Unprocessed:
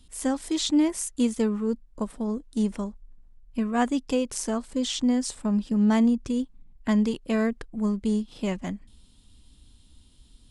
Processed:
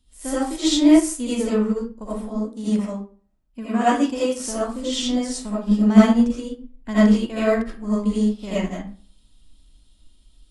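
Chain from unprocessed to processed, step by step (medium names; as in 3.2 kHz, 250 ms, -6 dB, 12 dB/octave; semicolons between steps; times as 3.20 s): 2.29–4.41 s: high-pass 73 Hz 12 dB/octave; reverberation RT60 0.45 s, pre-delay 40 ms, DRR -9.5 dB; upward expansion 1.5:1, over -32 dBFS; trim +1.5 dB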